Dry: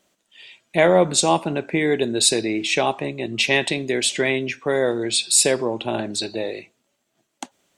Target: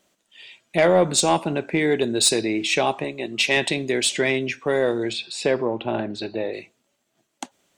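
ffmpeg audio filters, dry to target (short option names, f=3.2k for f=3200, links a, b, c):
-filter_complex "[0:a]asettb=1/sr,asplit=3[a][b][c];[a]atrim=end=3.044[d];[b]atrim=start=3.04:end=3.57,asetpts=PTS-STARTPTS,afade=t=in:d=0.004:c=qsin,afade=t=out:st=0.526:d=0.004:c=qsin,equalizer=f=86:t=o:w=2.1:g=-11.5[e];[c]atrim=start=3.566[f];[d][e]acrossfade=d=0.004:c1=hsin:c2=qsin[g];[g][f]acrossfade=d=0.004:c1=qsin:c2=hsin,asplit=3[h][i][j];[h]afade=t=out:st=5.12:d=0.02[k];[i]lowpass=2.6k,afade=t=in:st=5.12:d=0.02,afade=t=out:st=6.52:d=0.02[l];[j]afade=t=in:st=6.52:d=0.02[m];[k][l][m]amix=inputs=3:normalize=0,asoftclip=type=tanh:threshold=-7dB"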